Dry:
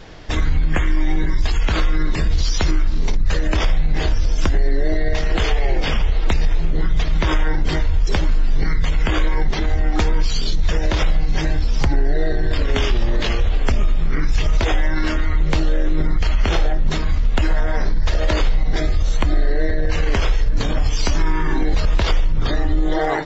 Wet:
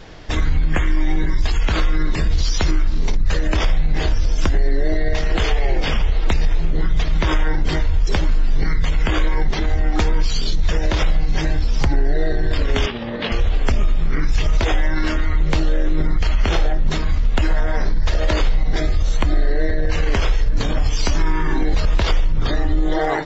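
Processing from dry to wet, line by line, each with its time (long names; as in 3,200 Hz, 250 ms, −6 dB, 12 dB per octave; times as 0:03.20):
0:12.86–0:13.32: loudspeaker in its box 140–3,900 Hz, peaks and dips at 230 Hz +7 dB, 340 Hz −8 dB, 500 Hz +4 dB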